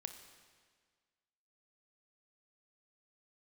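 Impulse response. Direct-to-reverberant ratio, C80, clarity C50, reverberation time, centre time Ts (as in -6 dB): 7.0 dB, 10.0 dB, 8.5 dB, 1.7 s, 22 ms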